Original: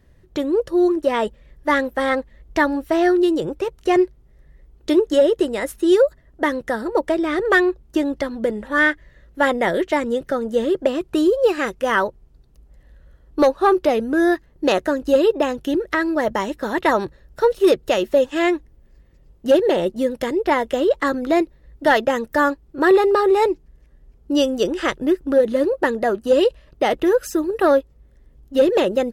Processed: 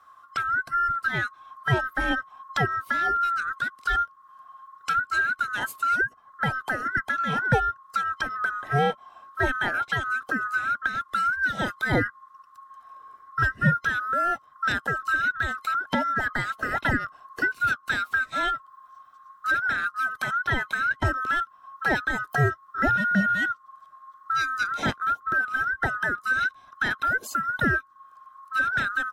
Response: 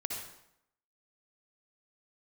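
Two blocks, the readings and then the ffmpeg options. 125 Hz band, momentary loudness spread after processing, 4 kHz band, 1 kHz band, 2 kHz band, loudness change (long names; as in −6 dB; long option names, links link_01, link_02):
+10.5 dB, 5 LU, −6.0 dB, −2.0 dB, +2.0 dB, −6.0 dB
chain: -filter_complex "[0:a]afftfilt=real='real(if(lt(b,960),b+48*(1-2*mod(floor(b/48),2)),b),0)':imag='imag(if(lt(b,960),b+48*(1-2*mod(floor(b/48),2)),b),0)':win_size=2048:overlap=0.75,acrossover=split=420[link_01][link_02];[link_02]acompressor=threshold=-27dB:ratio=2.5[link_03];[link_01][link_03]amix=inputs=2:normalize=0"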